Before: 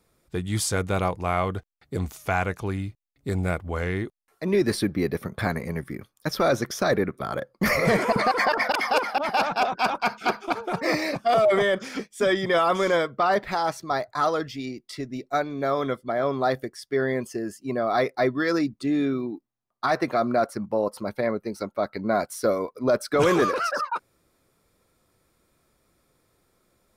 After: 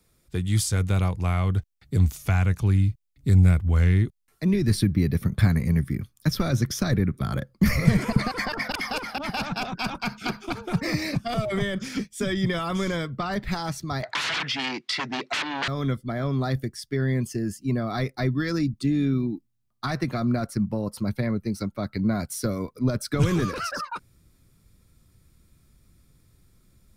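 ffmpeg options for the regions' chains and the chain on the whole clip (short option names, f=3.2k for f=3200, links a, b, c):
-filter_complex "[0:a]asettb=1/sr,asplit=3[a][b][c];[a]atrim=end=14.034[d];[b]atrim=start=14.03:end=15.68,asetpts=PTS-STARTPTS,afade=t=in:d=0.004:c=qsin,afade=t=out:st=1.646:d=0.004:c=qsin,aeval=exprs='0.224*sin(PI/2*8.91*val(0)/0.224)':c=same,highpass=720,lowpass=3k[e];[c]atrim=start=15.676[f];[d][e]acrossfade=d=0.004:c1=hsin:c2=qsin[g];[g][f]acrossfade=d=0.004:c1=qsin:c2=hsin,equalizer=f=730:w=0.43:g=-8.5,acrossover=split=150[h][i];[i]acompressor=threshold=-30dB:ratio=3[j];[h][j]amix=inputs=2:normalize=0,asubboost=boost=3.5:cutoff=240,volume=4dB"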